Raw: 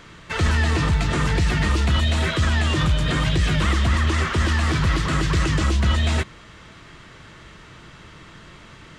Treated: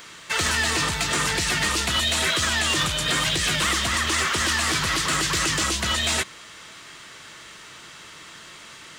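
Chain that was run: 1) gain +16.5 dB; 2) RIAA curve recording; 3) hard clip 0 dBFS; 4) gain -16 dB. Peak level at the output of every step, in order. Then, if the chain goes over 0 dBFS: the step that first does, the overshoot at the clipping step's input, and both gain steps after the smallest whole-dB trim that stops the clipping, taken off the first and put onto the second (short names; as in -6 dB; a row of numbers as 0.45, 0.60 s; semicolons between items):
+7.0, +6.0, 0.0, -16.0 dBFS; step 1, 6.0 dB; step 1 +10.5 dB, step 4 -10 dB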